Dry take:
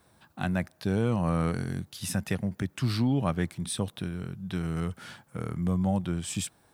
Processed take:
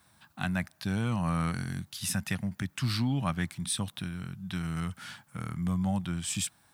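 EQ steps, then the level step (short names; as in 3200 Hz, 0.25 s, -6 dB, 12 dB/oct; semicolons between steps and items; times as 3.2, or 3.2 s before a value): low shelf 80 Hz -10.5 dB; bell 440 Hz -15 dB 1.2 oct; +2.5 dB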